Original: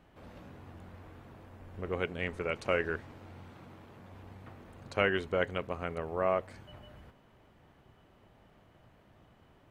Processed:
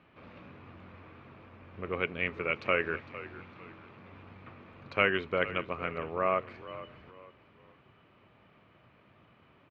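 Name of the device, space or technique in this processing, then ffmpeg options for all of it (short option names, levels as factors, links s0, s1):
frequency-shifting delay pedal into a guitar cabinet: -filter_complex "[0:a]asplit=4[s0][s1][s2][s3];[s1]adelay=455,afreqshift=-47,volume=0.168[s4];[s2]adelay=910,afreqshift=-94,volume=0.0589[s5];[s3]adelay=1365,afreqshift=-141,volume=0.0207[s6];[s0][s4][s5][s6]amix=inputs=4:normalize=0,highpass=93,equalizer=f=770:t=q:w=4:g=-4,equalizer=f=1200:t=q:w=4:g=6,equalizer=f=2400:t=q:w=4:g=9,lowpass=f=4300:w=0.5412,lowpass=f=4300:w=1.3066"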